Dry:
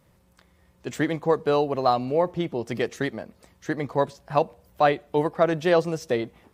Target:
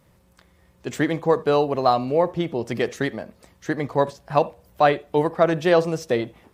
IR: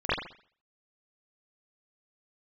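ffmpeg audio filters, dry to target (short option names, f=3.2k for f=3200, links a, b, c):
-filter_complex "[0:a]asplit=2[a][b];[1:a]atrim=start_sample=2205,atrim=end_sample=3969[c];[b][c]afir=irnorm=-1:irlink=0,volume=-32dB[d];[a][d]amix=inputs=2:normalize=0,volume=2.5dB"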